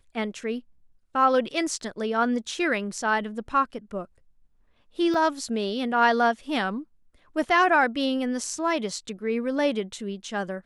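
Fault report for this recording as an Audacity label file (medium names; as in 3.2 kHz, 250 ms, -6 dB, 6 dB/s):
5.140000	5.140000	dropout 3.5 ms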